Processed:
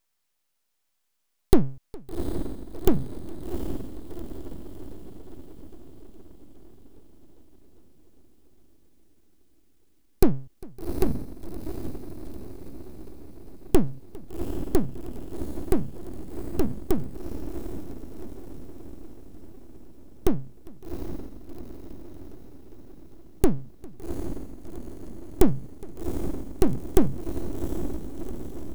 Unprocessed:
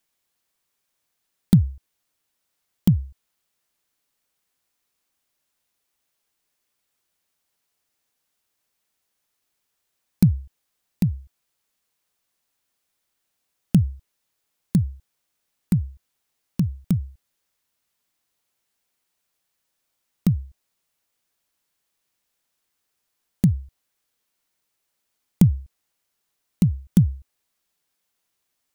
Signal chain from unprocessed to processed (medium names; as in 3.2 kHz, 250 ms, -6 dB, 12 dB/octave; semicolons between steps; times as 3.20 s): echo that smears into a reverb 758 ms, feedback 57%, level -8.5 dB; full-wave rectifier; modulated delay 408 ms, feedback 79%, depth 196 cents, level -23.5 dB; trim +1.5 dB